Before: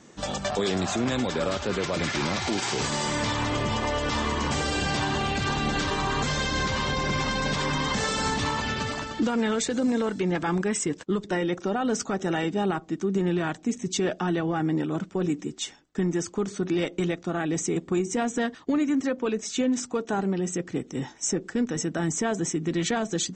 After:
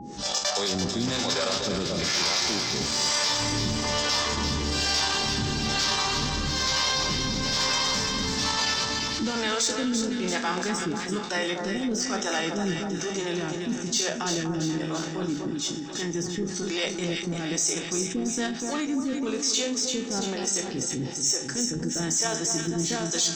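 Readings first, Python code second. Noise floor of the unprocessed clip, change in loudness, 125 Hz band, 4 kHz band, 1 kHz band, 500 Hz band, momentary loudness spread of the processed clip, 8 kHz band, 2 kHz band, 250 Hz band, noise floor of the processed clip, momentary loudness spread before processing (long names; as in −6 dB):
−49 dBFS, +1.0 dB, −3.0 dB, +7.0 dB, −2.0 dB, −3.0 dB, 7 LU, +7.0 dB, 0.0 dB, −2.5 dB, −34 dBFS, 3 LU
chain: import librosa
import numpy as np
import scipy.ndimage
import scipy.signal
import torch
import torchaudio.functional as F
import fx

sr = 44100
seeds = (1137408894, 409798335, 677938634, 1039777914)

p1 = fx.spec_trails(x, sr, decay_s=0.38)
p2 = fx.peak_eq(p1, sr, hz=5200.0, db=14.5, octaves=1.0)
p3 = fx.hum_notches(p2, sr, base_hz=50, count=3)
p4 = fx.transient(p3, sr, attack_db=-6, sustain_db=-10)
p5 = fx.level_steps(p4, sr, step_db=13)
p6 = p4 + F.gain(torch.from_numpy(p5), -3.0).numpy()
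p7 = 10.0 ** (-7.5 / 20.0) * np.tanh(p6 / 10.0 ** (-7.5 / 20.0))
p8 = fx.harmonic_tremolo(p7, sr, hz=1.1, depth_pct=100, crossover_hz=410.0)
p9 = p8 + 10.0 ** (-54.0 / 20.0) * np.sin(2.0 * np.pi * 820.0 * np.arange(len(p8)) / sr)
p10 = p9 + fx.echo_split(p9, sr, split_hz=1400.0, low_ms=244, high_ms=339, feedback_pct=52, wet_db=-7, dry=0)
p11 = fx.env_flatten(p10, sr, amount_pct=50)
y = F.gain(torch.from_numpy(p11), -6.0).numpy()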